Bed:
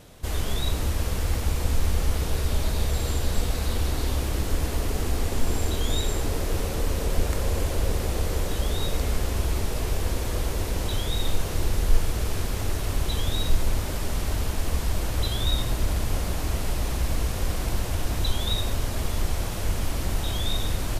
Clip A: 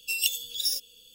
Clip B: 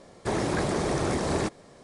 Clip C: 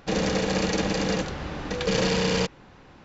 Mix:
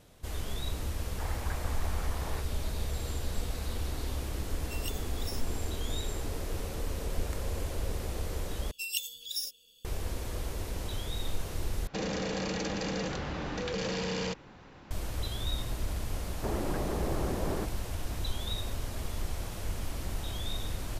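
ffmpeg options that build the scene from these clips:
-filter_complex "[2:a]asplit=2[a][b];[1:a]asplit=2[c][d];[0:a]volume=-9dB[e];[a]asuperpass=centerf=1300:order=4:qfactor=0.8[f];[3:a]acompressor=threshold=-28dB:ratio=5:attack=1.2:release=47:knee=1:detection=peak[g];[b]lowpass=1.4k[h];[e]asplit=3[i][j][k];[i]atrim=end=8.714[l];[d]atrim=end=1.14,asetpts=PTS-STARTPTS,volume=-7.5dB[m];[j]atrim=start=9.846:end=11.874[n];[g]atrim=end=3.04,asetpts=PTS-STARTPTS,volume=-2dB[o];[k]atrim=start=14.906[p];[f]atrim=end=1.83,asetpts=PTS-STARTPTS,volume=-10dB,afade=t=in:d=0.004:c=hsin,afade=t=out:st=1.826:d=0.004:c=hsin,adelay=930[q];[c]atrim=end=1.14,asetpts=PTS-STARTPTS,volume=-16dB,afade=t=in:d=0.004:c=hsin,afade=t=out:st=1.136:d=0.004:c=hsin,adelay=4620[r];[h]atrim=end=1.83,asetpts=PTS-STARTPTS,volume=-7dB,afade=t=in:d=0.004:c=hsin,afade=t=out:st=1.826:d=0.004:c=hsin,adelay=16170[s];[l][m]acrossfade=d=0.004:c1=hsin:c2=hsin[t];[t][n]acrossfade=d=0.004:c1=hsin:c2=hsin[u];[u][o]acrossfade=d=0.004:c1=hsin:c2=hsin[v];[v][p]acrossfade=d=0.004:c1=hsin:c2=hsin[w];[w][q][r][s]amix=inputs=4:normalize=0"

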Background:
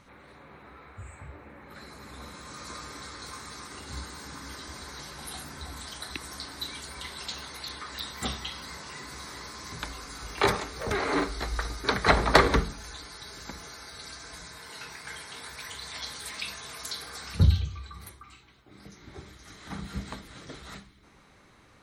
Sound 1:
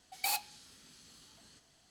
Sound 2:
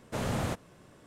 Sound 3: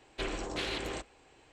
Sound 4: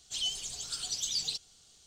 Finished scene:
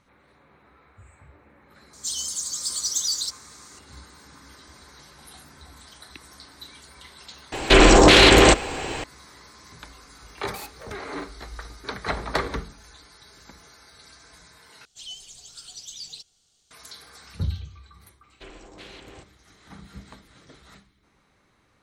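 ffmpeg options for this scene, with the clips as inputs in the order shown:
-filter_complex "[4:a]asplit=2[a][b];[3:a]asplit=2[c][d];[0:a]volume=-7dB[e];[a]aexciter=amount=9.8:drive=10:freq=3.6k[f];[c]alimiter=level_in=32.5dB:limit=-1dB:release=50:level=0:latency=1[g];[e]asplit=2[h][i];[h]atrim=end=14.854[j];[b]atrim=end=1.86,asetpts=PTS-STARTPTS,volume=-6dB[k];[i]atrim=start=16.706[l];[f]atrim=end=1.86,asetpts=PTS-STARTPTS,volume=-17.5dB,afade=t=in:d=0.004:c=hsin,afade=t=out:st=1.856:d=0.004:c=hsin,adelay=1930[m];[g]atrim=end=1.52,asetpts=PTS-STARTPTS,volume=-2dB,afade=t=in:d=0.004:c=hsin,afade=t=out:st=1.516:d=0.004:c=hsin,adelay=7520[n];[1:a]atrim=end=1.9,asetpts=PTS-STARTPTS,volume=-7dB,afade=t=in:d=0.004:c=hsin,afade=t=out:st=1.896:d=0.004:c=hsin,adelay=10300[o];[d]atrim=end=1.52,asetpts=PTS-STARTPTS,volume=-9dB,afade=t=in:d=0.004:c=hsin,afade=t=out:st=1.516:d=0.004:c=hsin,adelay=18220[p];[j][k]acrossfade=d=0.004:c1=hsin:c2=hsin[q];[q][l]acrossfade=d=0.004:c1=hsin:c2=hsin[r];[r][m][n][o][p]amix=inputs=5:normalize=0"

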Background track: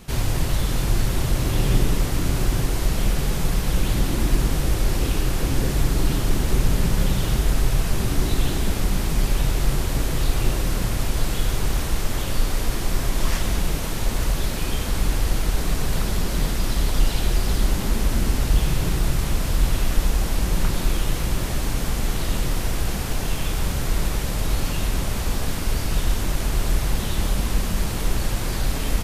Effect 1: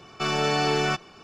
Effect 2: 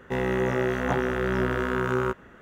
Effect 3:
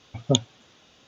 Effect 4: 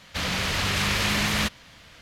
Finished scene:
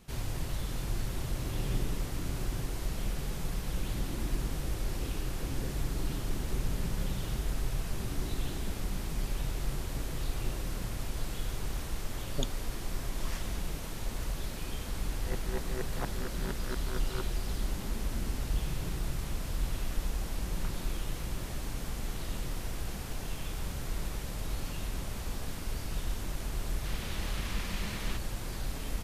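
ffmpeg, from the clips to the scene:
-filter_complex "[0:a]volume=-13dB[a];[2:a]aeval=exprs='val(0)*pow(10,-28*if(lt(mod(-4.3*n/s,1),2*abs(-4.3)/1000),1-mod(-4.3*n/s,1)/(2*abs(-4.3)/1000),(mod(-4.3*n/s,1)-2*abs(-4.3)/1000)/(1-2*abs(-4.3)/1000))/20)':c=same[b];[4:a]lowpass=7.6k[c];[3:a]atrim=end=1.07,asetpts=PTS-STARTPTS,volume=-15.5dB,afade=t=in:d=0.004:c=hsin,afade=t=out:st=1.066:d=0.004:c=hsin,adelay=12080[d];[b]atrim=end=2.41,asetpts=PTS-STARTPTS,volume=-9dB,afade=t=in:d=0.004:c=hsin,afade=t=out:st=2.406:d=0.004:c=hsin,adelay=15120[e];[c]atrim=end=2.01,asetpts=PTS-STARTPTS,volume=-17.5dB,afade=t=in:d=0.004:c=hsin,afade=t=out:st=2.006:d=0.004:c=hsin,adelay=26690[f];[a][d][e][f]amix=inputs=4:normalize=0"

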